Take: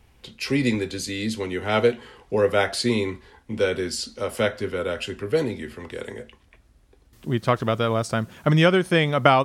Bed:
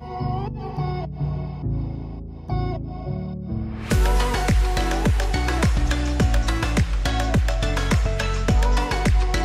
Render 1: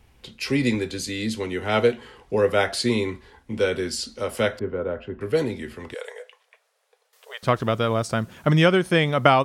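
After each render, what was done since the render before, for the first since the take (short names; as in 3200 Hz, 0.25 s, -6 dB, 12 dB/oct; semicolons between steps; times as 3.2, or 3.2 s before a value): 4.59–5.21 LPF 1100 Hz; 5.94–7.43 brick-wall FIR high-pass 420 Hz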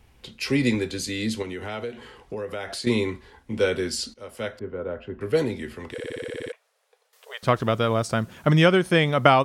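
1.42–2.87 compressor 4:1, threshold -30 dBFS; 4.14–5.36 fade in, from -15.5 dB; 5.92 stutter in place 0.06 s, 10 plays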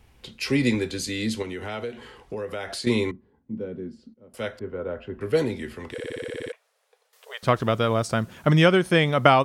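3.11–4.34 band-pass 200 Hz, Q 1.9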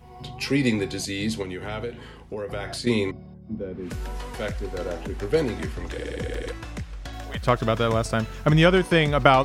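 add bed -14 dB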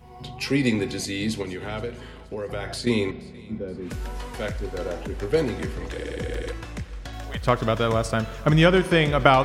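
thinning echo 0.474 s, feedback 50%, level -21.5 dB; spring tank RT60 1.6 s, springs 37 ms, chirp 50 ms, DRR 15.5 dB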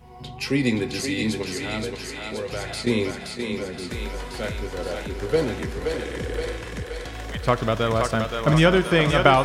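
thinning echo 0.524 s, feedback 72%, high-pass 450 Hz, level -3.5 dB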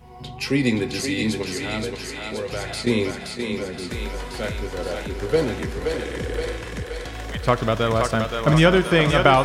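gain +1.5 dB; limiter -2 dBFS, peak gain reduction 2 dB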